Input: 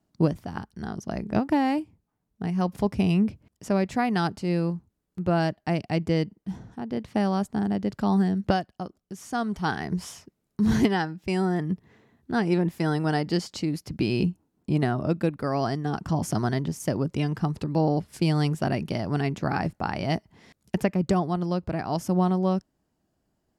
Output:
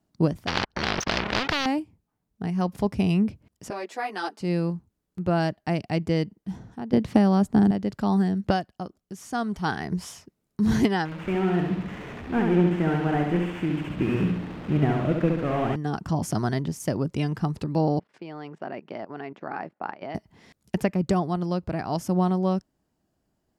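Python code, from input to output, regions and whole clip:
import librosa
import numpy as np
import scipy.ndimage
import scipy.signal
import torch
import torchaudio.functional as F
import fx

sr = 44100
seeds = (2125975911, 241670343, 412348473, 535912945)

y = fx.chain(x, sr, fx.leveller(passes=5),
    fx.air_absorb(metres=240.0),
    fx.spectral_comp(ratio=4.0), at=(0.47, 1.66))
y = fx.chain(y, sr, fx.highpass(hz=350.0, slope=24),
    fx.ensemble(), at=(3.7, 4.4))
y = fx.chain(y, sr, fx.low_shelf(hz=450.0, db=7.0),
    fx.band_squash(depth_pct=100), at=(6.93, 7.71))
y = fx.chain(y, sr, fx.delta_mod(bps=16000, step_db=-33.0),
    fx.backlash(play_db=-43.5),
    fx.echo_feedback(ms=68, feedback_pct=51, wet_db=-4.0), at=(11.05, 15.76))
y = fx.chain(y, sr, fx.level_steps(step_db=15),
    fx.bandpass_edges(low_hz=350.0, high_hz=2100.0), at=(17.99, 20.15))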